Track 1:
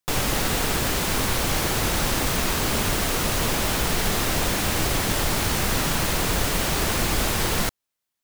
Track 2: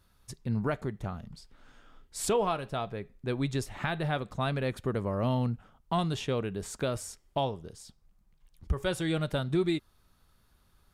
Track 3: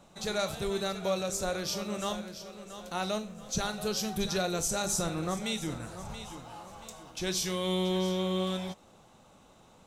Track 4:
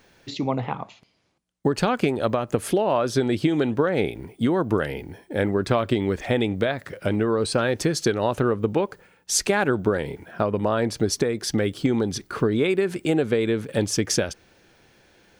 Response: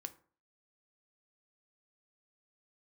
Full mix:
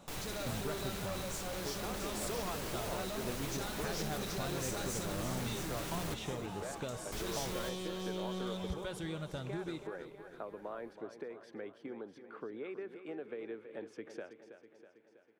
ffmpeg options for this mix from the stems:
-filter_complex "[0:a]volume=-17.5dB,asplit=3[a][b][c];[a]atrim=end=6.14,asetpts=PTS-STARTPTS,afade=t=out:st=6.136:d=0.004:c=hsin[d];[b]atrim=start=6.14:end=7.12,asetpts=PTS-STARTPTS,volume=0[e];[c]atrim=start=7.12,asetpts=PTS-STARTPTS,afade=t=in:d=0.004:c=hsin[f];[d][e][f]concat=n=3:v=0:a=1,asplit=3[g][h][i];[h]volume=-4.5dB[j];[i]volume=-17.5dB[k];[1:a]volume=-7dB,asplit=2[l][m];[m]volume=-21.5dB[n];[2:a]volume=0dB,asplit=2[o][p];[p]volume=-21.5dB[q];[3:a]highpass=f=100:w=0.5412,highpass=f=100:w=1.3066,acrossover=split=270 2600:gain=0.112 1 0.0708[r][s][t];[r][s][t]amix=inputs=3:normalize=0,volume=-19dB,asplit=2[u][v];[v]volume=-11.5dB[w];[g][o]amix=inputs=2:normalize=0,asoftclip=type=tanh:threshold=-33dB,alimiter=level_in=14.5dB:limit=-24dB:level=0:latency=1,volume=-14.5dB,volume=0dB[x];[l][u]amix=inputs=2:normalize=0,acompressor=threshold=-37dB:ratio=6,volume=0dB[y];[4:a]atrim=start_sample=2205[z];[j][z]afir=irnorm=-1:irlink=0[aa];[k][n][q][w]amix=inputs=4:normalize=0,aecho=0:1:324|648|972|1296|1620|1944|2268|2592|2916:1|0.58|0.336|0.195|0.113|0.0656|0.0381|0.0221|0.0128[ab];[x][y][aa][ab]amix=inputs=4:normalize=0"

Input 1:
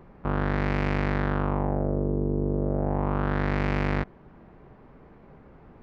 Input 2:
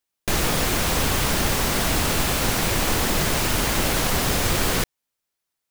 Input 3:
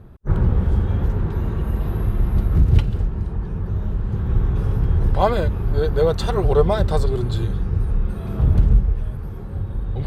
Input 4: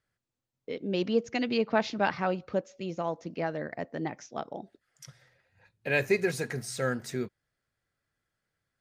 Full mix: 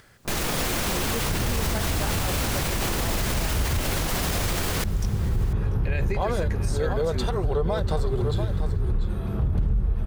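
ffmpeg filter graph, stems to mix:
-filter_complex "[0:a]volume=-16dB[a];[1:a]volume=1dB,asplit=2[b][c];[c]volume=-22.5dB[d];[2:a]adelay=1000,volume=-2dB,asplit=2[e][f];[f]volume=-11dB[g];[3:a]acompressor=mode=upward:threshold=-31dB:ratio=2.5,volume=-1dB,asplit=2[h][i];[i]volume=-20dB[j];[d][g][j]amix=inputs=3:normalize=0,aecho=0:1:690:1[k];[a][b][e][h][k]amix=inputs=5:normalize=0,alimiter=limit=-16dB:level=0:latency=1:release=74"

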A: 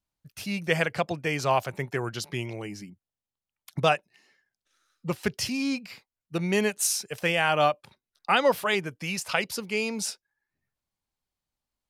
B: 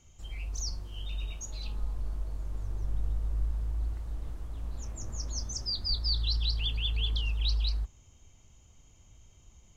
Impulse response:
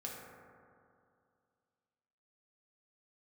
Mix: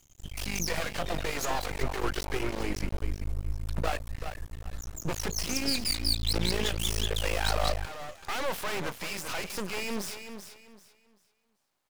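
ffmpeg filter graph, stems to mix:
-filter_complex "[0:a]asplit=2[a][b];[b]highpass=f=720:p=1,volume=37dB,asoftclip=type=tanh:threshold=-8dB[c];[a][c]amix=inputs=2:normalize=0,lowpass=f=1k:p=1,volume=-6dB,volume=-10.5dB,asplit=2[d][e];[e]volume=-9.5dB[f];[1:a]volume=1.5dB[g];[f]aecho=0:1:388|776|1164|1552:1|0.27|0.0729|0.0197[h];[d][g][h]amix=inputs=3:normalize=0,aeval=exprs='max(val(0),0)':c=same,crystalizer=i=1.5:c=0"

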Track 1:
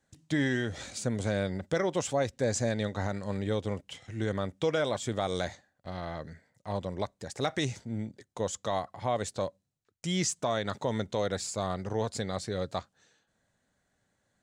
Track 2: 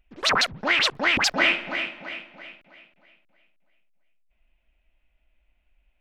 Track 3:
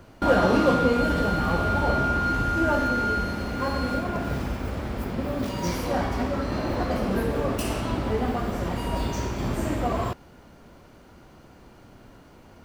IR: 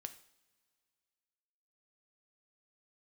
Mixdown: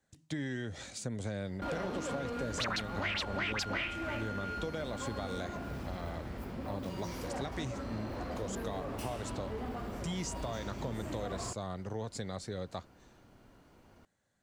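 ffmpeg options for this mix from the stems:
-filter_complex "[0:a]acrossover=split=270[a][b];[b]acompressor=threshold=-38dB:ratio=1.5[c];[a][c]amix=inputs=2:normalize=0,volume=-3.5dB[d];[1:a]adelay=2350,volume=-7dB,afade=t=out:st=3.73:d=0.5:silence=0.237137[e];[2:a]asoftclip=type=tanh:threshold=-21dB,adelay=1400,volume=-10.5dB[f];[d][e][f]amix=inputs=3:normalize=0,acompressor=threshold=-34dB:ratio=3"

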